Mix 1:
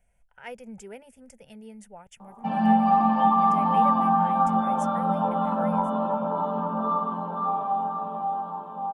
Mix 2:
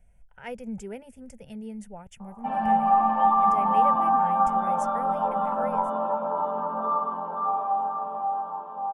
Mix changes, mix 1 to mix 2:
background: add band-pass 560–2200 Hz; master: add bass shelf 320 Hz +11 dB

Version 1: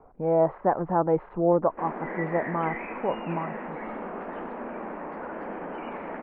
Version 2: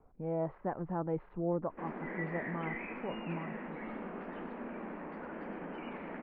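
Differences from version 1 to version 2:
speech -4.5 dB; master: add peaking EQ 790 Hz -10.5 dB 2.7 oct

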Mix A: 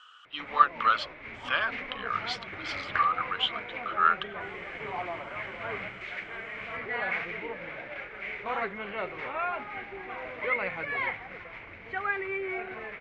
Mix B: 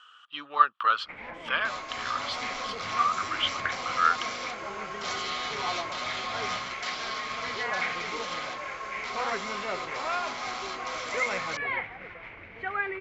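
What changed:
first sound: entry +0.70 s; second sound: unmuted

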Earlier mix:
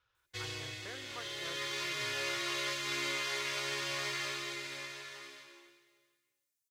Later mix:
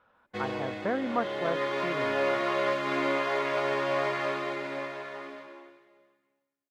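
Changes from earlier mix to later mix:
speech +4.5 dB; master: remove FFT filter 120 Hz 0 dB, 220 Hz -29 dB, 350 Hz -10 dB, 640 Hz -20 dB, 6.1 kHz +12 dB

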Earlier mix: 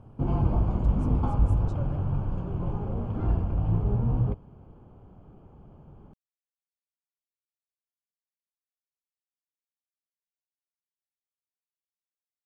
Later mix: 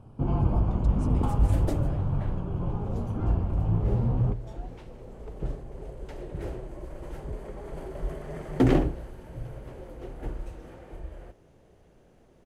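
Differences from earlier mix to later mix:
speech +8.5 dB; second sound: unmuted

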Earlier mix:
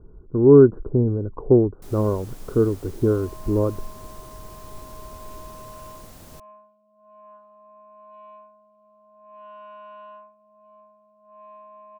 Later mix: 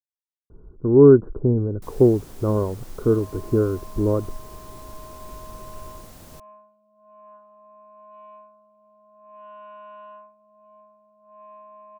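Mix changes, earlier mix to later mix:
speech: entry +0.50 s; second sound: add low-pass 3.2 kHz

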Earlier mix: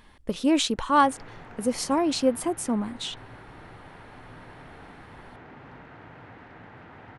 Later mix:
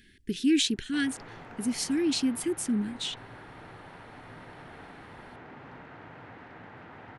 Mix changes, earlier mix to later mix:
speech: add Chebyshev band-stop 400–1600 Hz, order 4; master: add bass shelf 68 Hz -9 dB

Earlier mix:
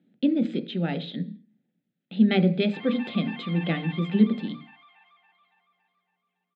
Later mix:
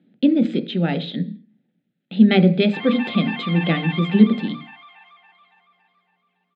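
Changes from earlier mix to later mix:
speech +6.5 dB; background +10.0 dB

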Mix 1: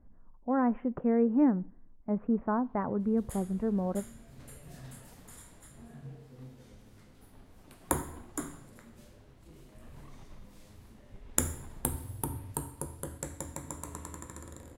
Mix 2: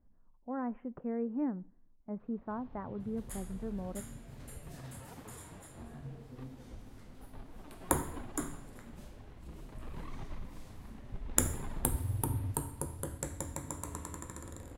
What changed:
speech -9.5 dB; first sound +8.5 dB

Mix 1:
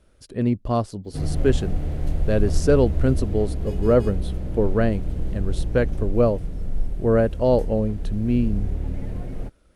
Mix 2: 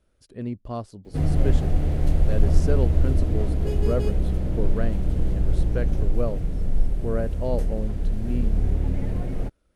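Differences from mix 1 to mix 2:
speech -9.5 dB; background +3.5 dB

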